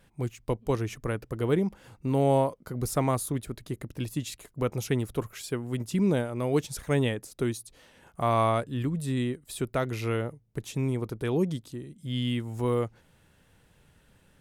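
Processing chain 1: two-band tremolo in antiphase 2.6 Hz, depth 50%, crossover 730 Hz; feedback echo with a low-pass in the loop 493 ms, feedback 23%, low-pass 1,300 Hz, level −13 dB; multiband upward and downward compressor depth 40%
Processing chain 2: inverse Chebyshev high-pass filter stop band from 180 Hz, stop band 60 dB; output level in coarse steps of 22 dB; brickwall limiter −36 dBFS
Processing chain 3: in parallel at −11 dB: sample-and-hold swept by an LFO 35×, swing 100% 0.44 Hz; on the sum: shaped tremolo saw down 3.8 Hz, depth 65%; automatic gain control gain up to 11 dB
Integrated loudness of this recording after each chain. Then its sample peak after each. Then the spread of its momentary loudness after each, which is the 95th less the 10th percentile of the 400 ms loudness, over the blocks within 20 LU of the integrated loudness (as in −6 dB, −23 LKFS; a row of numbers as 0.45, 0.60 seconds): −32.0, −48.5, −21.0 LKFS; −14.0, −36.0, −3.0 dBFS; 11, 11, 11 LU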